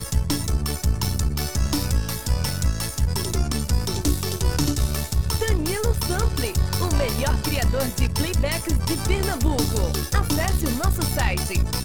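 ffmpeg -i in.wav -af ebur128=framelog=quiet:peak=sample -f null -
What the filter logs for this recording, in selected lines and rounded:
Integrated loudness:
  I:         -23.6 LUFS
  Threshold: -33.6 LUFS
Loudness range:
  LRA:         1.3 LU
  Threshold: -43.5 LUFS
  LRA low:   -24.4 LUFS
  LRA high:  -23.0 LUFS
Sample peak:
  Peak:       -6.9 dBFS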